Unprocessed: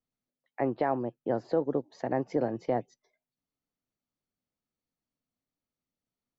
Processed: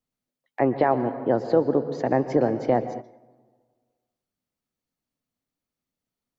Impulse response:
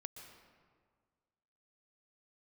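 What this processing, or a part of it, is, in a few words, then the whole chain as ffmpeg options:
keyed gated reverb: -filter_complex "[0:a]asplit=3[a][b][c];[1:a]atrim=start_sample=2205[d];[b][d]afir=irnorm=-1:irlink=0[e];[c]apad=whole_len=281436[f];[e][f]sidechaingate=range=-13dB:threshold=-55dB:ratio=16:detection=peak,volume=5.5dB[g];[a][g]amix=inputs=2:normalize=0,volume=1.5dB"

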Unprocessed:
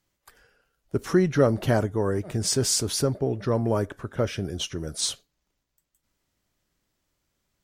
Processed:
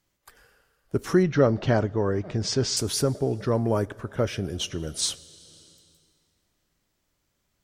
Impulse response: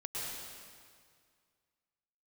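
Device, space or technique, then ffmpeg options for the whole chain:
compressed reverb return: -filter_complex "[0:a]asplit=2[a][b];[1:a]atrim=start_sample=2205[c];[b][c]afir=irnorm=-1:irlink=0,acompressor=threshold=-36dB:ratio=5,volume=-11dB[d];[a][d]amix=inputs=2:normalize=0,asettb=1/sr,asplit=3[e][f][g];[e]atrim=end=1.234[h];[f]atrim=start=1.23:end=2.77,asetpts=PTS-STARTPTS,afade=t=in:d=0.004:c=qsin,afade=t=out:st=1.536:d=0.004:c=qsin,lowpass=f=5.7k:w=0.5412,lowpass=f=5.7k:w=1.3066[i];[g]atrim=start=2.766[j];[h][i]acrossfade=d=0.004:c1=hsin:c2=qsin[k];[k][j]acrossfade=d=0.004:c1=qsin:c2=hsin"

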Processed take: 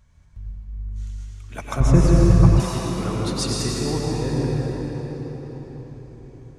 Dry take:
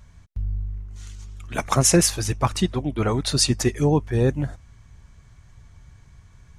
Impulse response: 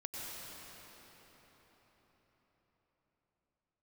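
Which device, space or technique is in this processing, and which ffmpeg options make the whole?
cathedral: -filter_complex "[1:a]atrim=start_sample=2205[a];[0:a][a]afir=irnorm=-1:irlink=0,asettb=1/sr,asplit=3[b][c][d];[b]atrim=end=1.804[e];[c]atrim=start=1.8:end=2.6,asetpts=PTS-STARTPTS,afade=t=in:d=0.004:c=qsin,afade=t=out:st=0.796:d=0.004:c=qsin,aemphasis=mode=reproduction:type=riaa[f];[d]atrim=start=2.596[g];[e][f]acrossfade=d=0.004:c1=hsin:c2=qsin[h];[h][g]acrossfade=d=0.004:c1=qsin:c2=hsin,volume=-3.5dB"

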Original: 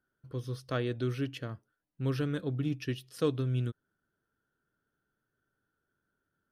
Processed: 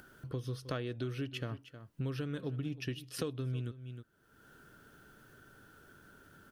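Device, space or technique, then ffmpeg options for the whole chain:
upward and downward compression: -af "equalizer=f=2.8k:t=o:w=0.44:g=3,aecho=1:1:312:0.106,acompressor=mode=upward:threshold=-48dB:ratio=2.5,acompressor=threshold=-40dB:ratio=8,volume=5.5dB"

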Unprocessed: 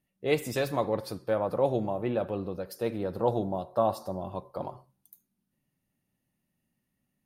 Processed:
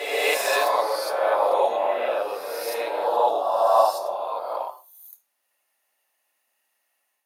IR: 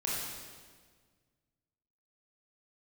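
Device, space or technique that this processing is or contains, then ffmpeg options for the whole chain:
ghost voice: -filter_complex "[0:a]areverse[a];[1:a]atrim=start_sample=2205[b];[a][b]afir=irnorm=-1:irlink=0,areverse,highpass=f=610:w=0.5412,highpass=f=610:w=1.3066,volume=7.5dB"

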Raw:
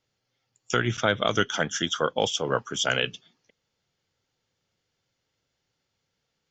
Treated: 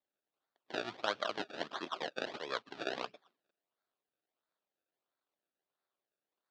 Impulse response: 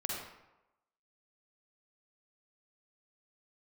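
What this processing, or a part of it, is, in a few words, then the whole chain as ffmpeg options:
circuit-bent sampling toy: -af "acrusher=samples=29:mix=1:aa=0.000001:lfo=1:lforange=29:lforate=1.5,highpass=480,equalizer=f=490:t=q:w=4:g=-5,equalizer=f=870:t=q:w=4:g=-5,equalizer=f=2.1k:t=q:w=4:g=-4,equalizer=f=3.8k:t=q:w=4:g=3,lowpass=f=4.7k:w=0.5412,lowpass=f=4.7k:w=1.3066,volume=-8.5dB"

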